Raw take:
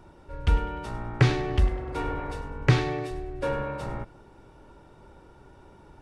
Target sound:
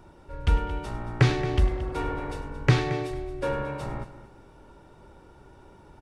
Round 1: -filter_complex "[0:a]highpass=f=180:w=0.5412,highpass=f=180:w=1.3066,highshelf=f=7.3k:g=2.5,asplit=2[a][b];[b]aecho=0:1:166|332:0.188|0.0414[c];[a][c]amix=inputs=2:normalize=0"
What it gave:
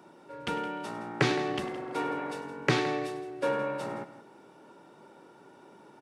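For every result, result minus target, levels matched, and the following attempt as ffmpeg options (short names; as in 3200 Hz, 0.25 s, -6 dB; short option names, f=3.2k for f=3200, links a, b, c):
echo 58 ms early; 250 Hz band +2.5 dB
-filter_complex "[0:a]highpass=f=180:w=0.5412,highpass=f=180:w=1.3066,highshelf=f=7.3k:g=2.5,asplit=2[a][b];[b]aecho=0:1:224|448:0.188|0.0414[c];[a][c]amix=inputs=2:normalize=0"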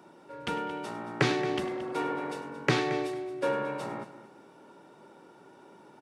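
250 Hz band +2.5 dB
-filter_complex "[0:a]highshelf=f=7.3k:g=2.5,asplit=2[a][b];[b]aecho=0:1:224|448:0.188|0.0414[c];[a][c]amix=inputs=2:normalize=0"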